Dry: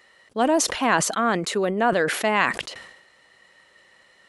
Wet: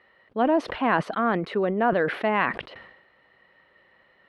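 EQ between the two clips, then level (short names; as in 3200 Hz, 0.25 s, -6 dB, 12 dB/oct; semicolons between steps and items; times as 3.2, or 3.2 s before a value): air absorption 440 m; notch 7300 Hz, Q 7; 0.0 dB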